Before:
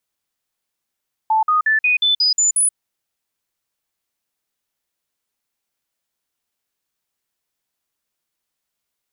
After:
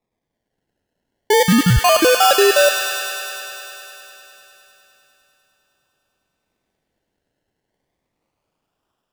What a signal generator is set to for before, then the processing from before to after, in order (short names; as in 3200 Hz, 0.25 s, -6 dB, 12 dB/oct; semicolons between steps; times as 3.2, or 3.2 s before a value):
stepped sine 877 Hz up, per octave 2, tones 8, 0.13 s, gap 0.05 s -12.5 dBFS
AGC gain up to 3.5 dB; decimation with a swept rate 29×, swing 60% 0.31 Hz; on a send: thin delay 0.101 s, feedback 83%, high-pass 1400 Hz, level -4 dB